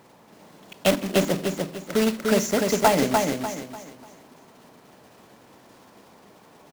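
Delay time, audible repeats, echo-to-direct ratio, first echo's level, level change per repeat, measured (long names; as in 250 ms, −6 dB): 296 ms, 4, −3.0 dB, −3.5 dB, −9.5 dB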